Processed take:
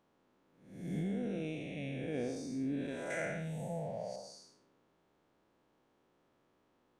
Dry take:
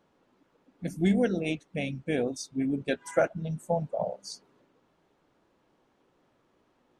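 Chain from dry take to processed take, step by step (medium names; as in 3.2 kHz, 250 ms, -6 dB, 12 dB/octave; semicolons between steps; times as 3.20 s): spectral blur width 274 ms; 0.98–2.14 s: compression, threshold -30 dBFS, peak gain reduction 6 dB; 3.10–4.16 s: resonant high shelf 1.5 kHz +7 dB, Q 3; trim -3.5 dB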